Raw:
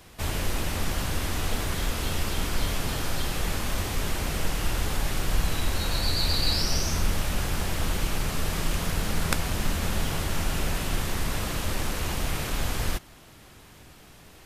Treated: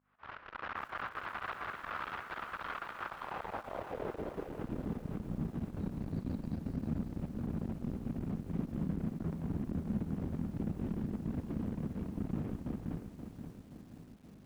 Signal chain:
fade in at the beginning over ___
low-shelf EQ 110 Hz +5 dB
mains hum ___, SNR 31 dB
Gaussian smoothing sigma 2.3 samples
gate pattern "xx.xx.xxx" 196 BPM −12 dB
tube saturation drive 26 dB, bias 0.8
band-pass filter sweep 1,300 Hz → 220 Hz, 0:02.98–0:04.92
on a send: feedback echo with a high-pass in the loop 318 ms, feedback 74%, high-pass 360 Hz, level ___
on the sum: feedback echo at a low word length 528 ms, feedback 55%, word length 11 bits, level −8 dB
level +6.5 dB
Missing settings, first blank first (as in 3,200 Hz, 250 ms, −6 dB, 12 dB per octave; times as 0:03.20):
0.62 s, 50 Hz, −23 dB